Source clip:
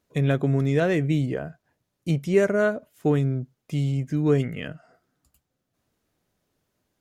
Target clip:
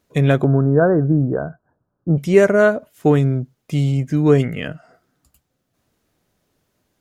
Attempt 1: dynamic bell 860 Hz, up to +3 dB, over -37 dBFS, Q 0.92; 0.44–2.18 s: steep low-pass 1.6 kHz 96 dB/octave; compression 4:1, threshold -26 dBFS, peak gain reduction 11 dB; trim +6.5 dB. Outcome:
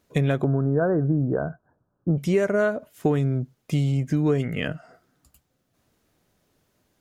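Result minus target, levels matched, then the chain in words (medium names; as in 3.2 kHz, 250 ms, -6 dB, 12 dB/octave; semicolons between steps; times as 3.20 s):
compression: peak gain reduction +11 dB
dynamic bell 860 Hz, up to +3 dB, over -37 dBFS, Q 0.92; 0.44–2.18 s: steep low-pass 1.6 kHz 96 dB/octave; trim +6.5 dB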